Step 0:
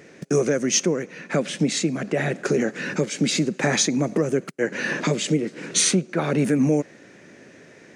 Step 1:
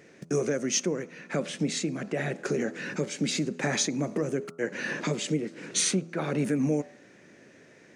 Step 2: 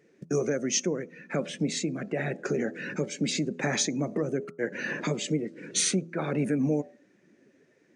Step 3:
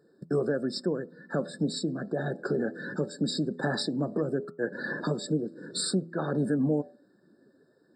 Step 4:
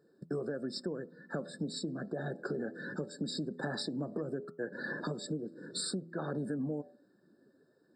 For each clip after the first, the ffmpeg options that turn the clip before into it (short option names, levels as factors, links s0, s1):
-af "bandreject=f=82.99:t=h:w=4,bandreject=f=165.98:t=h:w=4,bandreject=f=248.97:t=h:w=4,bandreject=f=331.96:t=h:w=4,bandreject=f=414.95:t=h:w=4,bandreject=f=497.94:t=h:w=4,bandreject=f=580.93:t=h:w=4,bandreject=f=663.92:t=h:w=4,bandreject=f=746.91:t=h:w=4,bandreject=f=829.9:t=h:w=4,bandreject=f=912.89:t=h:w=4,bandreject=f=995.88:t=h:w=4,bandreject=f=1078.87:t=h:w=4,bandreject=f=1161.86:t=h:w=4,bandreject=f=1244.85:t=h:w=4,bandreject=f=1327.84:t=h:w=4,bandreject=f=1410.83:t=h:w=4,volume=0.473"
-af "afftdn=nr=13:nf=-43"
-af "afftfilt=real='re*eq(mod(floor(b*sr/1024/1800),2),0)':imag='im*eq(mod(floor(b*sr/1024/1800),2),0)':win_size=1024:overlap=0.75"
-af "acompressor=threshold=0.0398:ratio=6,volume=0.596"